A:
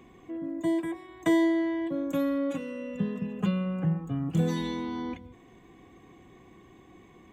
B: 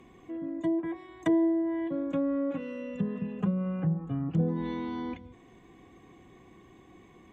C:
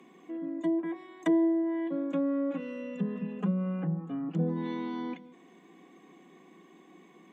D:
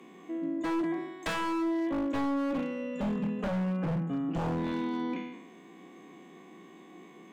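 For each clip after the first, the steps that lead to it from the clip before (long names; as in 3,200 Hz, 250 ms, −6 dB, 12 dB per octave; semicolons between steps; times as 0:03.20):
treble cut that deepens with the level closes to 740 Hz, closed at −23 dBFS; level −1 dB
Chebyshev high-pass filter 170 Hz, order 5
peak hold with a decay on every bin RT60 0.97 s; wave folding −27.5 dBFS; level +2 dB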